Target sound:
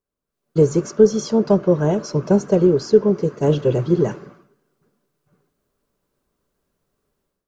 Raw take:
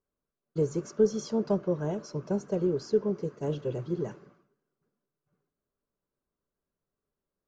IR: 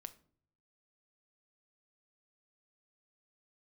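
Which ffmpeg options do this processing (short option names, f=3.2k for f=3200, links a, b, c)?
-af "dynaudnorm=f=250:g=3:m=15dB"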